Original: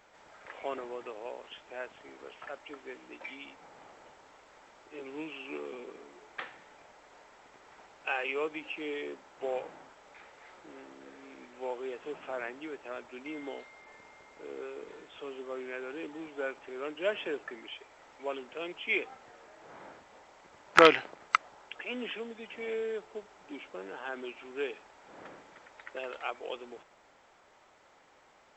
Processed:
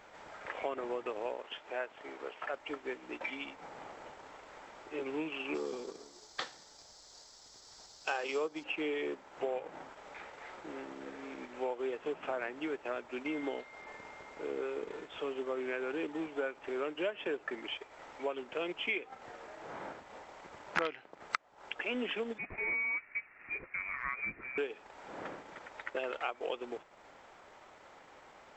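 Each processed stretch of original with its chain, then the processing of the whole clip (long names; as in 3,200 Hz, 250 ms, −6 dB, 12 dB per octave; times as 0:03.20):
0:01.33–0:02.54: bass and treble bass −9 dB, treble −3 dB + upward compression, threshold −53 dBFS
0:05.54–0:08.64: high shelf with overshoot 3,500 Hz +11 dB, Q 3 + multiband upward and downward expander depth 70%
0:22.38–0:24.58: high-frequency loss of the air 310 metres + voice inversion scrambler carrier 2,700 Hz
whole clip: high-shelf EQ 4,200 Hz −5.5 dB; downward compressor 6 to 1, threshold −38 dBFS; transient designer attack 0 dB, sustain −6 dB; level +6 dB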